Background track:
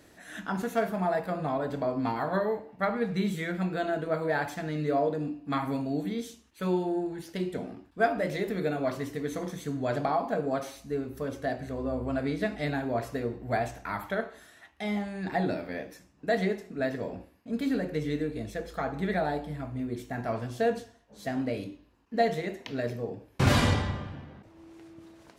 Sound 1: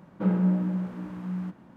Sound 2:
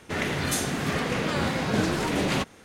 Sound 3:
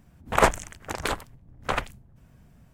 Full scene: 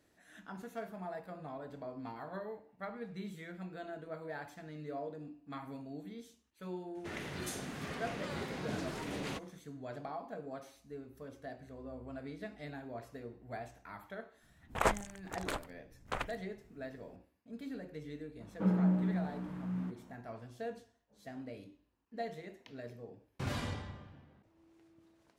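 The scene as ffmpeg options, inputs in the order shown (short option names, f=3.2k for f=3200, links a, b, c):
-filter_complex "[0:a]volume=-15dB[a];[1:a]acontrast=33[b];[2:a]atrim=end=2.64,asetpts=PTS-STARTPTS,volume=-15dB,afade=t=in:d=0.004:c=hsin,afade=t=out:st=2.636:d=0.004:c=hsin,adelay=6950[c];[3:a]atrim=end=2.73,asetpts=PTS-STARTPTS,volume=-11dB,afade=t=in:d=0.004:c=hsin,afade=t=out:st=2.726:d=0.004:c=hsin,adelay=14430[d];[b]atrim=end=1.76,asetpts=PTS-STARTPTS,volume=-11dB,afade=t=in:d=0.004:c=hsin,afade=t=out:st=1.756:d=0.004:c=hsin,adelay=18400[e];[a][c][d][e]amix=inputs=4:normalize=0"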